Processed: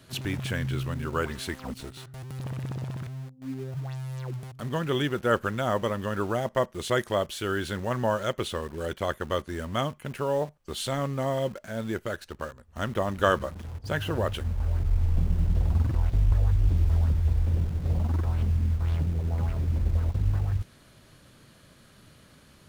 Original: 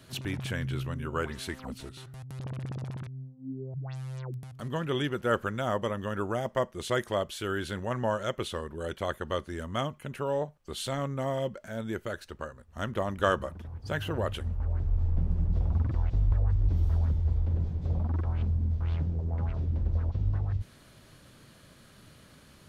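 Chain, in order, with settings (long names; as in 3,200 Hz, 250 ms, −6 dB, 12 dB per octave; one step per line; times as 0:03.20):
in parallel at −7.5 dB: bit reduction 7 bits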